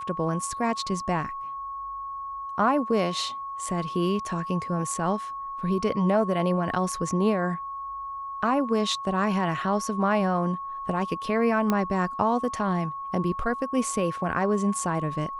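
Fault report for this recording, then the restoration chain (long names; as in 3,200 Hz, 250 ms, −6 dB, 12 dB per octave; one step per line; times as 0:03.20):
whistle 1,100 Hz −32 dBFS
0:11.70: click −11 dBFS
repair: click removal
notch filter 1,100 Hz, Q 30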